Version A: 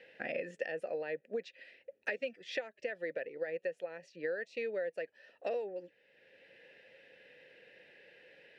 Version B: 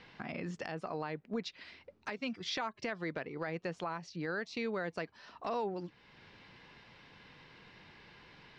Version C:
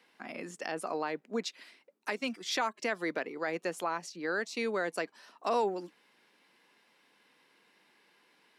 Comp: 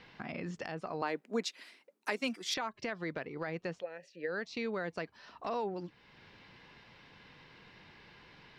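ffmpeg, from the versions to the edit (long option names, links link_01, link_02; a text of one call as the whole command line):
ffmpeg -i take0.wav -i take1.wav -i take2.wav -filter_complex "[1:a]asplit=3[link_01][link_02][link_03];[link_01]atrim=end=1.022[link_04];[2:a]atrim=start=1.018:end=2.542[link_05];[link_02]atrim=start=2.538:end=3.84[link_06];[0:a]atrim=start=3.74:end=4.36[link_07];[link_03]atrim=start=4.26[link_08];[link_04][link_05]acrossfade=duration=0.004:curve1=hsin:curve2=hsin[link_09];[link_09][link_06]acrossfade=duration=0.004:curve1=hsin:curve2=hsin[link_10];[link_10][link_07]acrossfade=duration=0.1:curve1=tri:curve2=tri[link_11];[link_11][link_08]acrossfade=duration=0.1:curve1=tri:curve2=tri" out.wav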